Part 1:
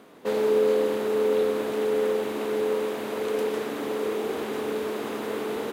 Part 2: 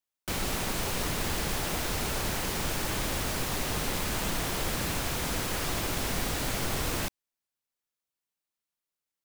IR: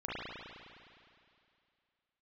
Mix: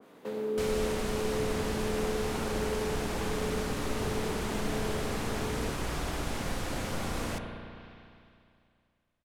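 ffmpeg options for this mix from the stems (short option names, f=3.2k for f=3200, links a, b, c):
-filter_complex "[0:a]acrossover=split=270[a][b];[b]acompressor=threshold=-39dB:ratio=2[c];[a][c]amix=inputs=2:normalize=0,volume=-5.5dB,asplit=2[d][e];[e]volume=-12.5dB[f];[1:a]lowpass=11k,adelay=300,volume=-5.5dB,asplit=2[g][h];[h]volume=-6dB[i];[2:a]atrim=start_sample=2205[j];[f][i]amix=inputs=2:normalize=0[k];[k][j]afir=irnorm=-1:irlink=0[l];[d][g][l]amix=inputs=3:normalize=0,bandreject=f=346:t=h:w=4,bandreject=f=692:t=h:w=4,bandreject=f=1.038k:t=h:w=4,bandreject=f=1.384k:t=h:w=4,bandreject=f=1.73k:t=h:w=4,bandreject=f=2.076k:t=h:w=4,bandreject=f=2.422k:t=h:w=4,bandreject=f=2.768k:t=h:w=4,bandreject=f=3.114k:t=h:w=4,bandreject=f=3.46k:t=h:w=4,bandreject=f=3.806k:t=h:w=4,bandreject=f=4.152k:t=h:w=4,bandreject=f=4.498k:t=h:w=4,bandreject=f=4.844k:t=h:w=4,bandreject=f=5.19k:t=h:w=4,bandreject=f=5.536k:t=h:w=4,bandreject=f=5.882k:t=h:w=4,bandreject=f=6.228k:t=h:w=4,bandreject=f=6.574k:t=h:w=4,bandreject=f=6.92k:t=h:w=4,bandreject=f=7.266k:t=h:w=4,bandreject=f=7.612k:t=h:w=4,bandreject=f=7.958k:t=h:w=4,bandreject=f=8.304k:t=h:w=4,bandreject=f=8.65k:t=h:w=4,bandreject=f=8.996k:t=h:w=4,bandreject=f=9.342k:t=h:w=4,bandreject=f=9.688k:t=h:w=4,bandreject=f=10.034k:t=h:w=4,bandreject=f=10.38k:t=h:w=4,bandreject=f=10.726k:t=h:w=4,bandreject=f=11.072k:t=h:w=4,bandreject=f=11.418k:t=h:w=4,bandreject=f=11.764k:t=h:w=4,adynamicequalizer=threshold=0.00282:dfrequency=1700:dqfactor=0.7:tfrequency=1700:tqfactor=0.7:attack=5:release=100:ratio=0.375:range=2:mode=cutabove:tftype=highshelf"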